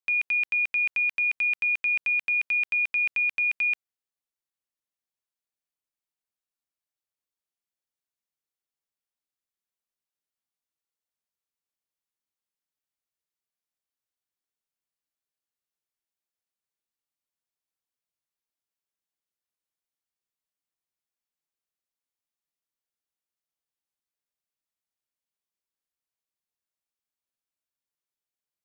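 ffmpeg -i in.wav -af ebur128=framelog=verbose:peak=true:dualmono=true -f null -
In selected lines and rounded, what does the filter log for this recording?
Integrated loudness:
  I:         -20.4 LUFS
  Threshold: -30.4 LUFS
Loudness range:
  LRA:         8.7 LU
  Threshold: -42.3 LUFS
  LRA low:   -28.8 LUFS
  LRA high:  -20.1 LUFS
True peak:
  Peak:      -20.8 dBFS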